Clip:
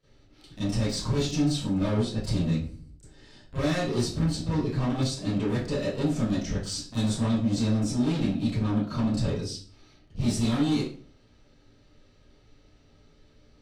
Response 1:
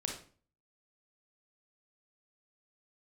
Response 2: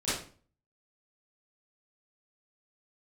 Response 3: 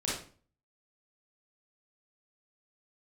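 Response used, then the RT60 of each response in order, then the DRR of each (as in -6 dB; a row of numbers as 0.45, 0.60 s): 2; 0.40, 0.40, 0.40 s; 1.0, -14.5, -7.0 dB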